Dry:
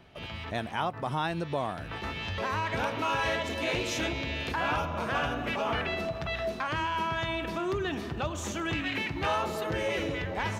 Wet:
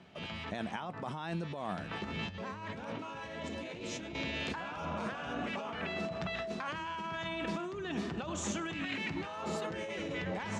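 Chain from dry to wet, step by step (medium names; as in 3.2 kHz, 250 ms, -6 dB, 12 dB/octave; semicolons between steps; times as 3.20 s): 2.01–4.14 s: bass shelf 480 Hz +7.5 dB; compressor with a negative ratio -34 dBFS, ratio -1; cabinet simulation 100–8800 Hz, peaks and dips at 120 Hz -5 dB, 190 Hz +8 dB, 7.3 kHz +4 dB; trim -5 dB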